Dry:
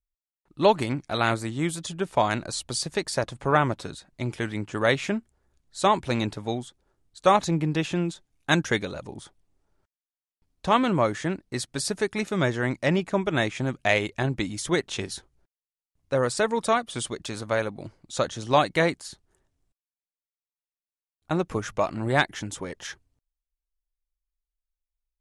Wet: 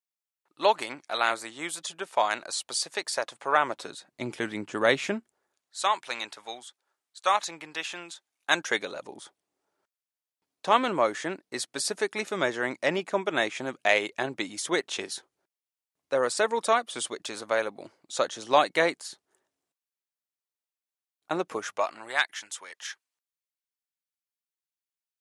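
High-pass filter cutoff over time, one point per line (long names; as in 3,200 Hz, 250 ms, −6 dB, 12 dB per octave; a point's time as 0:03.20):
0:03.54 630 Hz
0:04.21 240 Hz
0:05.07 240 Hz
0:05.85 980 Hz
0:08.08 980 Hz
0:08.98 380 Hz
0:21.49 380 Hz
0:22.24 1,300 Hz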